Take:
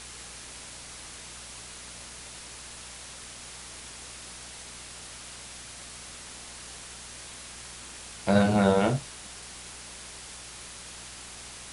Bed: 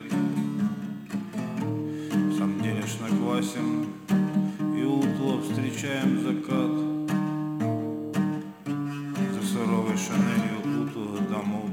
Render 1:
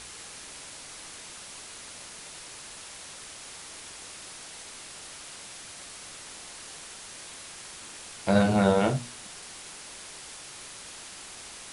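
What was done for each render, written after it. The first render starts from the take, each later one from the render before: de-hum 60 Hz, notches 4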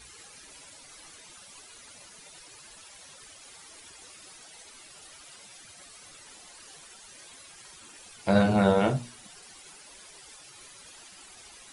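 denoiser 13 dB, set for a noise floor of -45 dBFS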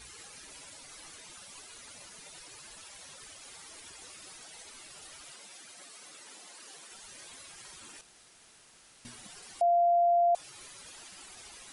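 5.32–6.92 Chebyshev high-pass 250 Hz; 8.01–9.05 room tone; 9.61–10.35 bleep 693 Hz -21 dBFS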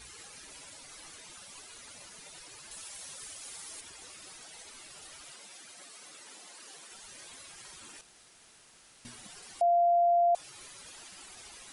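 2.71–3.81 high shelf 6600 Hz +9.5 dB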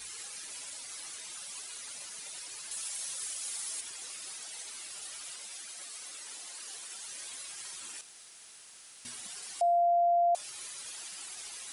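tilt +2.5 dB/oct; de-hum 297.6 Hz, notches 32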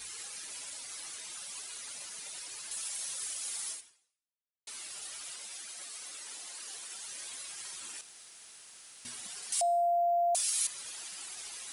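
3.71–4.67 fade out exponential; 9.52–10.67 tilt +4.5 dB/oct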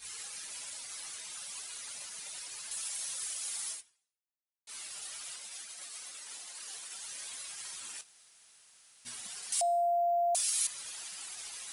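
gate -45 dBFS, range -8 dB; bell 340 Hz -4.5 dB 1.1 oct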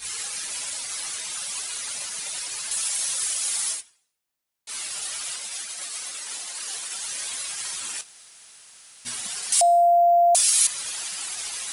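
gain +12 dB

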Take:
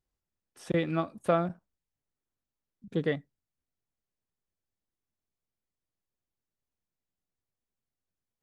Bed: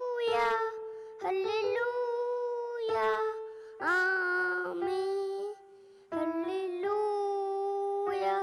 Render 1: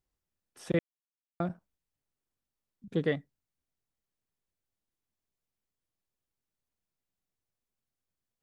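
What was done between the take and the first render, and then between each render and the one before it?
0.79–1.4 mute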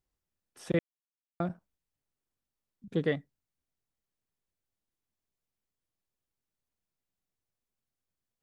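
nothing audible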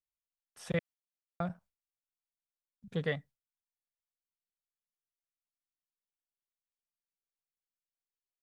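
gate with hold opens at -58 dBFS; bell 320 Hz -15 dB 0.69 oct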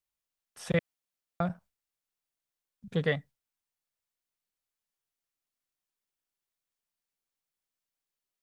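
gain +5 dB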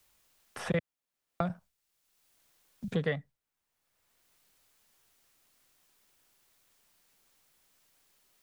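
three-band squash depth 70%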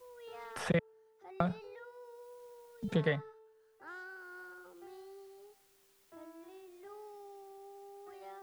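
add bed -20 dB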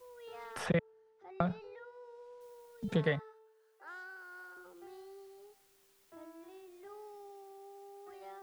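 0.66–2.41 air absorption 95 m; 3.19–4.57 HPF 420 Hz 24 dB/oct; 7.3–8.1 HPF 120 Hz 6 dB/oct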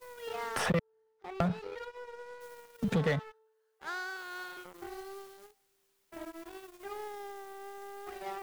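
sample leveller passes 3; compressor 2:1, threshold -31 dBFS, peak gain reduction 6.5 dB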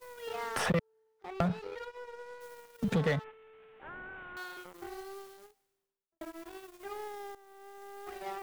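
3.24–4.37 delta modulation 16 kbps, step -50.5 dBFS; 5.32–6.21 studio fade out; 7.35–8.11 fade in, from -14.5 dB

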